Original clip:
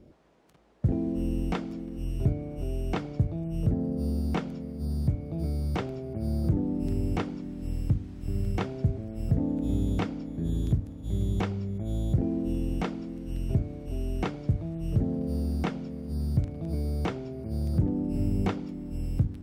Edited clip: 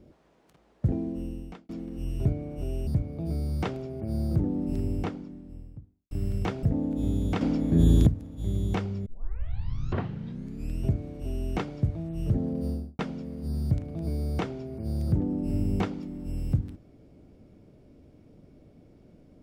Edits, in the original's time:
0:00.85–0:01.69: fade out
0:02.87–0:05.00: remove
0:06.74–0:08.24: fade out and dull
0:08.76–0:09.29: remove
0:10.07–0:10.73: clip gain +10 dB
0:11.72: tape start 1.77 s
0:15.30–0:15.65: fade out and dull

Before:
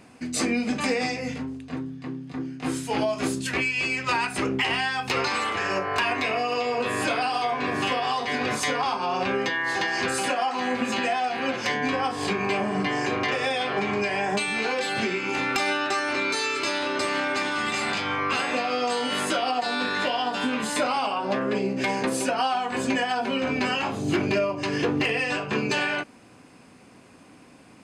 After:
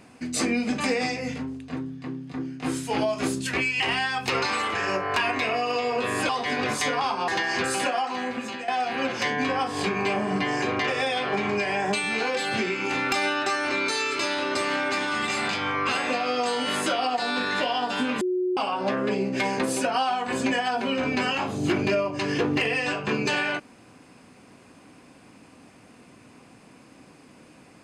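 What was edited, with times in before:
0:03.80–0:04.62: remove
0:07.11–0:08.11: remove
0:09.10–0:09.72: remove
0:10.33–0:11.12: fade out, to −11.5 dB
0:20.65–0:21.01: beep over 365 Hz −22 dBFS

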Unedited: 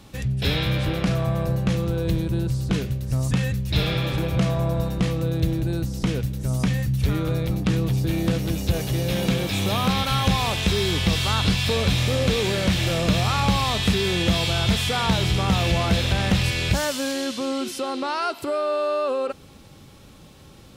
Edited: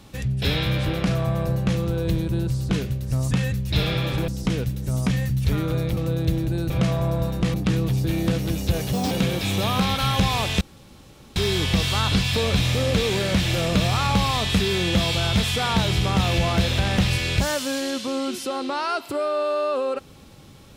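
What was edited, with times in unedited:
0:04.28–0:05.12: swap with 0:05.85–0:07.54
0:08.93–0:09.19: play speed 145%
0:10.69: splice in room tone 0.75 s

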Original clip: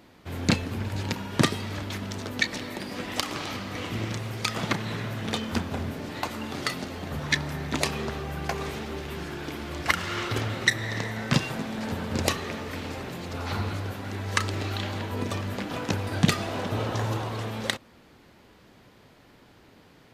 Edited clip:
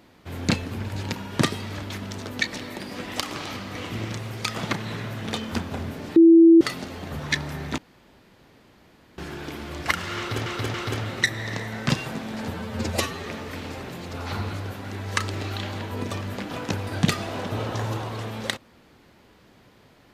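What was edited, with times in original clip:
0:06.16–0:06.61: beep over 331 Hz −8.5 dBFS
0:07.78–0:09.18: fill with room tone
0:10.18–0:10.46: repeat, 3 plays
0:11.98–0:12.46: time-stretch 1.5×

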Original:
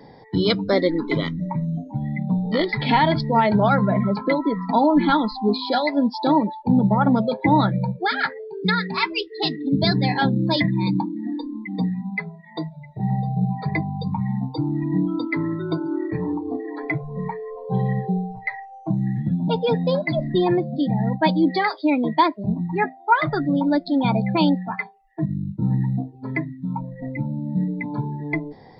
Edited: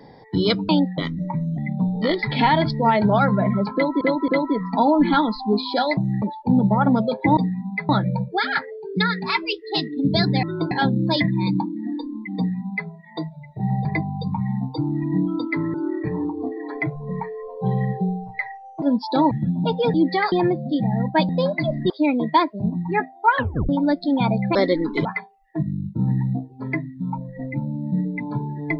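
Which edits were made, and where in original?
0:00.69–0:01.19: swap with 0:24.39–0:24.68
0:01.79–0:02.08: remove
0:04.24–0:04.51: repeat, 3 plays
0:05.93–0:06.42: swap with 0:18.90–0:19.15
0:11.77–0:12.29: duplicate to 0:07.57
0:13.25–0:13.65: remove
0:15.54–0:15.82: move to 0:10.11
0:19.78–0:20.39: swap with 0:21.36–0:21.74
0:23.18: tape stop 0.35 s

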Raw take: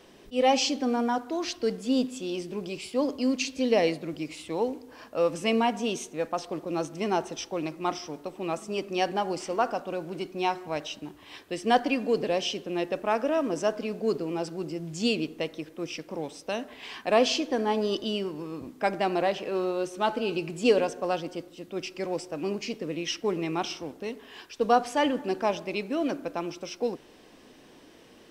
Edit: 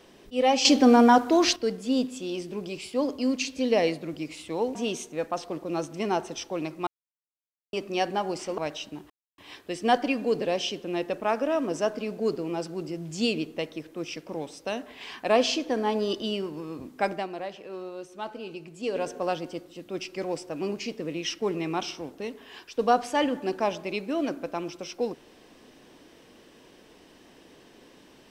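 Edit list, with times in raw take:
0:00.65–0:01.56: clip gain +10 dB
0:04.75–0:05.76: remove
0:07.88–0:08.74: silence
0:09.59–0:10.68: remove
0:11.20: splice in silence 0.28 s
0:18.90–0:20.92: duck −9.5 dB, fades 0.20 s

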